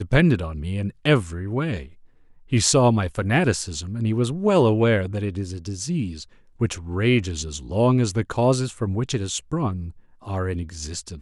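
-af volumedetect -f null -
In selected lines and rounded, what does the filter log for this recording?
mean_volume: -22.5 dB
max_volume: -1.7 dB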